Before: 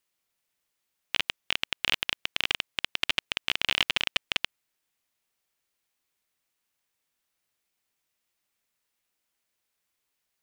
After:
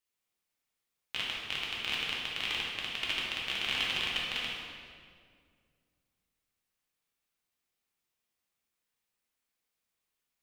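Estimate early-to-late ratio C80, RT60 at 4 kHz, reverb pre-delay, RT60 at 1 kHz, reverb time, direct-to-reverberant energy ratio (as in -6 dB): 1.5 dB, 1.5 s, 3 ms, 1.9 s, 2.1 s, -5.5 dB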